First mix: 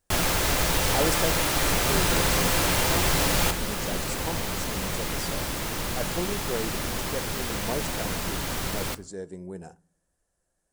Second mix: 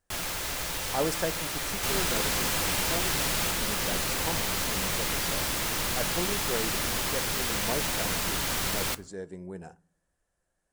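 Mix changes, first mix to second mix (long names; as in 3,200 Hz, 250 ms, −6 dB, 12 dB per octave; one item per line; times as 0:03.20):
speech: add bass and treble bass +2 dB, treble −9 dB
first sound −10.0 dB
master: add tilt shelving filter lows −3.5 dB, about 920 Hz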